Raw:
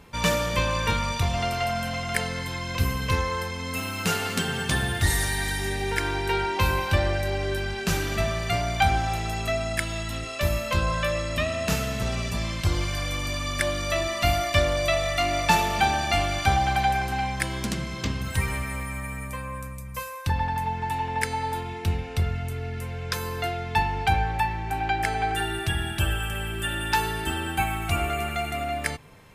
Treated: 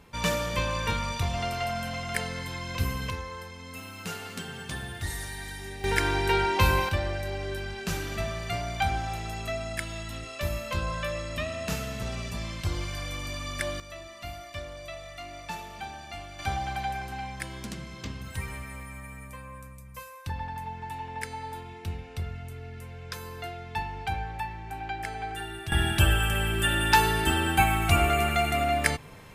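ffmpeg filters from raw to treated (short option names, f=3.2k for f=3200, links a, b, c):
-af "asetnsamples=n=441:p=0,asendcmd='3.1 volume volume -11dB;5.84 volume volume 1dB;6.89 volume volume -6dB;13.8 volume volume -17dB;16.39 volume volume -9dB;25.72 volume volume 3.5dB',volume=-4dB"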